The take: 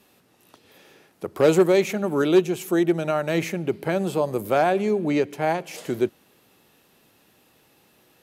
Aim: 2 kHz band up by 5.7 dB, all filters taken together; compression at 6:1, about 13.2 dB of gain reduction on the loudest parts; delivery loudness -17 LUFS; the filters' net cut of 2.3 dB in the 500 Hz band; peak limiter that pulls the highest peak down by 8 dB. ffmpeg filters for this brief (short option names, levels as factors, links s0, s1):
-af "equalizer=f=500:t=o:g=-3.5,equalizer=f=2000:t=o:g=7.5,acompressor=threshold=0.0398:ratio=6,volume=7.5,alimiter=limit=0.501:level=0:latency=1"